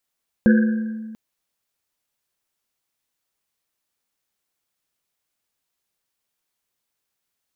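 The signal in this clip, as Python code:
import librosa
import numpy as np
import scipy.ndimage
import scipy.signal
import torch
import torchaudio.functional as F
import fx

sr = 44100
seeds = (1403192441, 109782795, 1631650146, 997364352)

y = fx.risset_drum(sr, seeds[0], length_s=0.69, hz=220.0, decay_s=1.8, noise_hz=1600.0, noise_width_hz=170.0, noise_pct=15)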